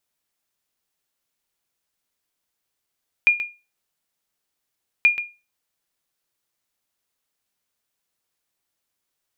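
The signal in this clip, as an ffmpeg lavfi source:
-f lavfi -i "aevalsrc='0.422*(sin(2*PI*2420*mod(t,1.78))*exp(-6.91*mod(t,1.78)/0.28)+0.282*sin(2*PI*2420*max(mod(t,1.78)-0.13,0))*exp(-6.91*max(mod(t,1.78)-0.13,0)/0.28))':d=3.56:s=44100"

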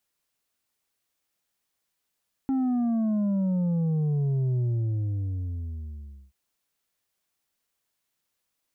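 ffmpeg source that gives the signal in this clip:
-f lavfi -i "aevalsrc='0.0708*clip((3.83-t)/1.74,0,1)*tanh(1.78*sin(2*PI*270*3.83/log(65/270)*(exp(log(65/270)*t/3.83)-1)))/tanh(1.78)':d=3.83:s=44100"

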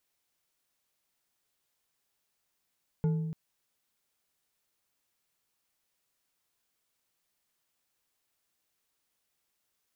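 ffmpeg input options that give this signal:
-f lavfi -i "aevalsrc='0.0708*pow(10,-3*t/1.5)*sin(2*PI*160*t)+0.0211*pow(10,-3*t/0.738)*sin(2*PI*441.1*t)+0.00631*pow(10,-3*t/0.46)*sin(2*PI*864.6*t)+0.00188*pow(10,-3*t/0.324)*sin(2*PI*1429.3*t)+0.000562*pow(10,-3*t/0.245)*sin(2*PI*2134.4*t)':d=0.29:s=44100"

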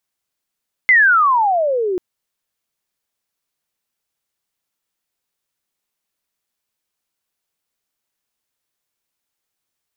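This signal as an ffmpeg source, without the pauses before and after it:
-f lavfi -i "aevalsrc='pow(10,(-7-10*t/1.09)/20)*sin(2*PI*2100*1.09/log(350/2100)*(exp(log(350/2100)*t/1.09)-1))':d=1.09:s=44100"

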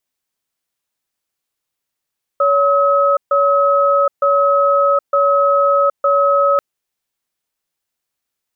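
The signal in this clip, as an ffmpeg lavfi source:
-f lavfi -i "aevalsrc='0.224*(sin(2*PI*564*t)+sin(2*PI*1280*t))*clip(min(mod(t,0.91),0.77-mod(t,0.91))/0.005,0,1)':d=4.19:s=44100"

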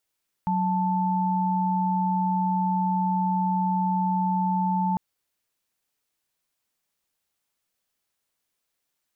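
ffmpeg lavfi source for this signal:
-f lavfi -i "aevalsrc='0.0631*(sin(2*PI*185*t)+sin(2*PI*880*t))':d=4.5:s=44100"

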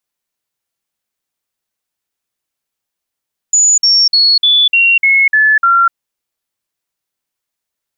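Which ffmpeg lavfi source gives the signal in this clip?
-f lavfi -i "aevalsrc='0.501*clip(min(mod(t,0.3),0.25-mod(t,0.3))/0.005,0,1)*sin(2*PI*6920*pow(2,-floor(t/0.3)/3)*mod(t,0.3))':d=2.4:s=44100"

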